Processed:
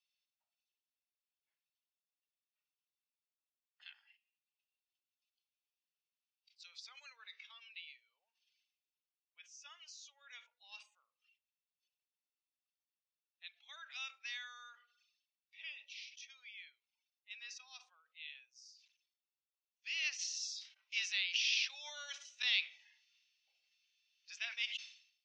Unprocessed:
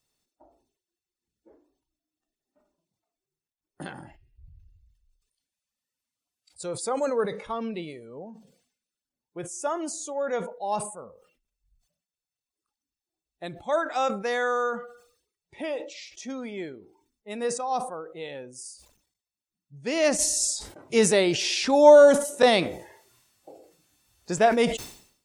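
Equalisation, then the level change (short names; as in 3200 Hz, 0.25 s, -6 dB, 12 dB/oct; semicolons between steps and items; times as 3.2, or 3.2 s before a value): ladder high-pass 2300 Hz, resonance 55%; Chebyshev low-pass 5900 Hz, order 5; -1.0 dB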